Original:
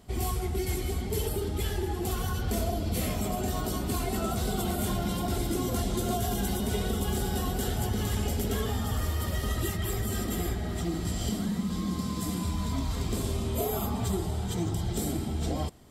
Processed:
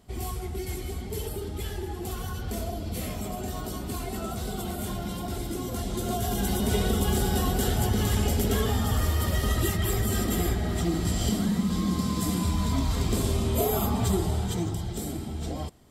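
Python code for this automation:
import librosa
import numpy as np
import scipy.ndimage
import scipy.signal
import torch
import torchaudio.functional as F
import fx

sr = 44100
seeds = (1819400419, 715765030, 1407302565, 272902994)

y = fx.gain(x, sr, db=fx.line((5.71, -3.0), (6.73, 4.5), (14.34, 4.5), (14.92, -2.5)))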